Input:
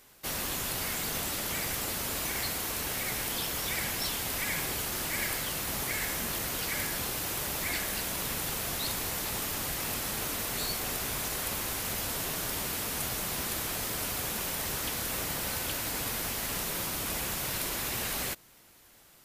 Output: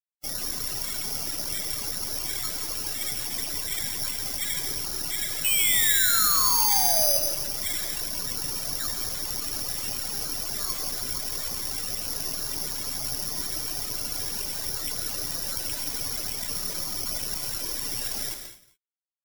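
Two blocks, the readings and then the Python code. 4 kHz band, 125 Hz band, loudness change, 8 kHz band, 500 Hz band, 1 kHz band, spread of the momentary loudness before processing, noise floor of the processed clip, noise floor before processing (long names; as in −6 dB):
+5.5 dB, −2.5 dB, +6.0 dB, +5.5 dB, −0.5 dB, +2.0 dB, 1 LU, −46 dBFS, −58 dBFS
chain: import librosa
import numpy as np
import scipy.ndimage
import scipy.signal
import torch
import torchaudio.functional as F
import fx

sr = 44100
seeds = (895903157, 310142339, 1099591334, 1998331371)

p1 = fx.tracing_dist(x, sr, depth_ms=0.19)
p2 = fx.dereverb_blind(p1, sr, rt60_s=0.63)
p3 = fx.over_compress(p2, sr, threshold_db=-43.0, ratio=-1.0)
p4 = p2 + F.gain(torch.from_numpy(p3), -2.0).numpy()
p5 = fx.spec_paint(p4, sr, seeds[0], shape='fall', start_s=5.44, length_s=1.74, low_hz=540.0, high_hz=2600.0, level_db=-28.0)
p6 = fx.quant_dither(p5, sr, seeds[1], bits=6, dither='none')
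p7 = fx.spec_topn(p6, sr, count=32)
p8 = p7 + fx.echo_single(p7, sr, ms=169, db=-12.0, dry=0)
p9 = fx.rev_gated(p8, sr, seeds[2], gate_ms=270, shape='flat', drr_db=9.0)
p10 = (np.kron(p9[::8], np.eye(8)[0]) * 8)[:len(p9)]
p11 = fx.echo_crushed(p10, sr, ms=139, feedback_pct=35, bits=4, wet_db=-8.0)
y = F.gain(torch.from_numpy(p11), -4.0).numpy()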